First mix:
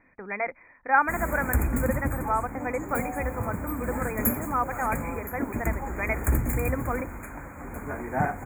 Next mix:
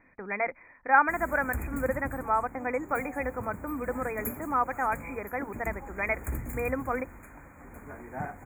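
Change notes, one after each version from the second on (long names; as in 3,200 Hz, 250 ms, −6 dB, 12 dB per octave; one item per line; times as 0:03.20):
background −10.0 dB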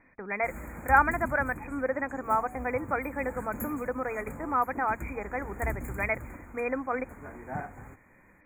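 background: entry −0.65 s
master: add high-shelf EQ 10,000 Hz −7 dB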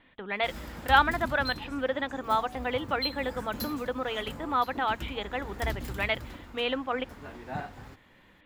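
master: remove linear-phase brick-wall band-stop 2,500–6,500 Hz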